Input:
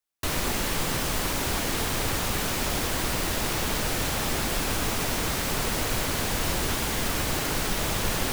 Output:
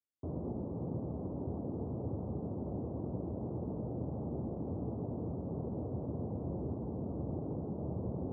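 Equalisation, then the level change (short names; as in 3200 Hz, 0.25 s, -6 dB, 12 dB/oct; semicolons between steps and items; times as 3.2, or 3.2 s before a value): Gaussian blur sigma 15 samples; HPF 80 Hz 24 dB/oct; -4.0 dB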